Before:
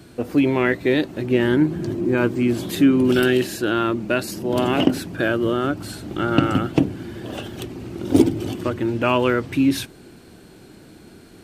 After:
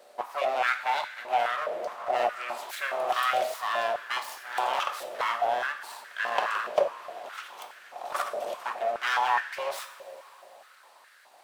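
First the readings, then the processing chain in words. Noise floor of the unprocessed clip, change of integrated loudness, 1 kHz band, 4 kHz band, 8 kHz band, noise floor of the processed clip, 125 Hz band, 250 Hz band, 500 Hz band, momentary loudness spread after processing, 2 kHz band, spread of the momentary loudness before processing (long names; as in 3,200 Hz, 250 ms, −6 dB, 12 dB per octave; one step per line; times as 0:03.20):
−46 dBFS, −9.0 dB, +1.5 dB, −6.0 dB, −8.0 dB, −56 dBFS, below −35 dB, −36.5 dB, −9.5 dB, 14 LU, −4.0 dB, 13 LU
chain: full-wave rectification
coupled-rooms reverb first 0.56 s, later 4.2 s, from −16 dB, DRR 6 dB
high-pass on a step sequencer 4.8 Hz 600–1,600 Hz
level −8.5 dB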